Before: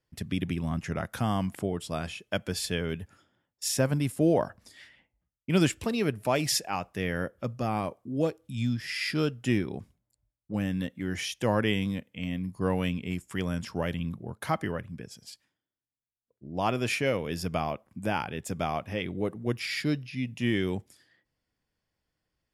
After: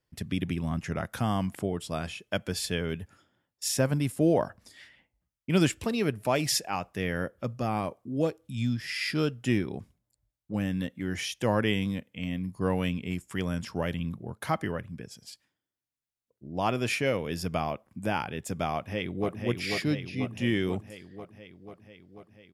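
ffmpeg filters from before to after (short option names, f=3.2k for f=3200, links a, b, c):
-filter_complex "[0:a]asplit=2[a][b];[b]afade=t=in:st=18.73:d=0.01,afade=t=out:st=19.42:d=0.01,aecho=0:1:490|980|1470|1960|2450|2940|3430|3920|4410|4900|5390|5880:0.595662|0.416964|0.291874|0.204312|0.143018|0.100113|0.0700791|0.0490553|0.0343387|0.0240371|0.016826|0.0117782[c];[a][c]amix=inputs=2:normalize=0"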